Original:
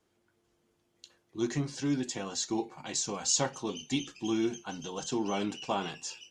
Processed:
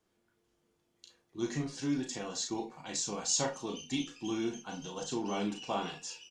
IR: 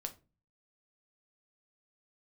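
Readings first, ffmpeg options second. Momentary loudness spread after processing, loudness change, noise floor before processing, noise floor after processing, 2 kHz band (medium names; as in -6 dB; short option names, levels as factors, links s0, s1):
10 LU, -2.5 dB, -75 dBFS, -77 dBFS, -2.5 dB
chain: -filter_complex "[0:a]asplit=2[s0][s1];[s1]aecho=1:1:4.2:0.85[s2];[1:a]atrim=start_sample=2205,atrim=end_sample=3087,adelay=34[s3];[s2][s3]afir=irnorm=-1:irlink=0,volume=0.631[s4];[s0][s4]amix=inputs=2:normalize=0,volume=0.631"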